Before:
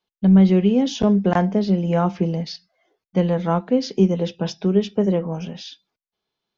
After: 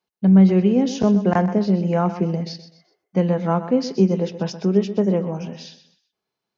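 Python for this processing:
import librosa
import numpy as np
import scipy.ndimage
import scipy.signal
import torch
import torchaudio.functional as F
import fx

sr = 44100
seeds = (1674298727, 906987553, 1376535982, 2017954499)

y = scipy.signal.sosfilt(scipy.signal.butter(2, 69.0, 'highpass', fs=sr, output='sos'), x)
y = fx.peak_eq(y, sr, hz=3400.0, db=-9.0, octaves=0.39)
y = fx.echo_feedback(y, sr, ms=126, feedback_pct=34, wet_db=-12.5)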